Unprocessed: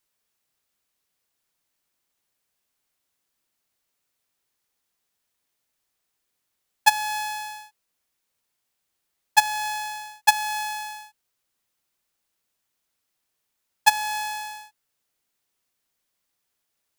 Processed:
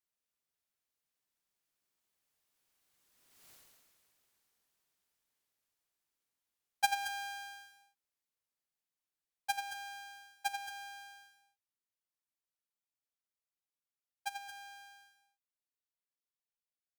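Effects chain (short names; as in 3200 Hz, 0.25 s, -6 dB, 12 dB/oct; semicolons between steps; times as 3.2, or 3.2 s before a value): Doppler pass-by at 3.5, 21 m/s, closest 1.8 m; loudspeakers at several distances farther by 30 m -8 dB, 76 m -11 dB; gain +18 dB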